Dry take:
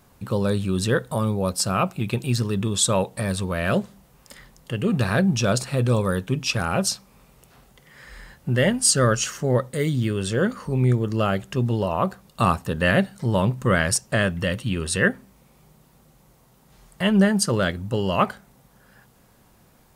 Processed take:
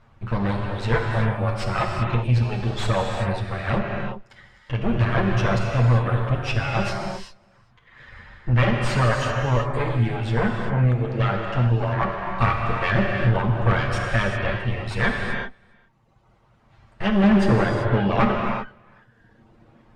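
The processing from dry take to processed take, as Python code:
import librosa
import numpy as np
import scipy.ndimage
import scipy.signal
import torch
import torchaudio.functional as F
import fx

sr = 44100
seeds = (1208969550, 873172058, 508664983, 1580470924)

y = fx.lower_of_two(x, sr, delay_ms=8.7)
y = fx.peak_eq(y, sr, hz=280.0, db=fx.steps((0.0, -8.5), (17.24, 2.5)), octaves=2.0)
y = np.clip(y, -10.0 ** (-16.0 / 20.0), 10.0 ** (-16.0 / 20.0))
y = y + 10.0 ** (-20.0 / 20.0) * np.pad(y, (int(405 * sr / 1000.0), 0))[:len(y)]
y = fx.dereverb_blind(y, sr, rt60_s=1.5)
y = fx.rev_gated(y, sr, seeds[0], gate_ms=410, shape='flat', drr_db=0.5)
y = 10.0 ** (-16.0 / 20.0) * (np.abs((y / 10.0 ** (-16.0 / 20.0) + 3.0) % 4.0 - 2.0) - 1.0)
y = scipy.signal.sosfilt(scipy.signal.butter(2, 2400.0, 'lowpass', fs=sr, output='sos'), y)
y = fx.low_shelf(y, sr, hz=140.0, db=5.5)
y = F.gain(torch.from_numpy(y), 4.0).numpy()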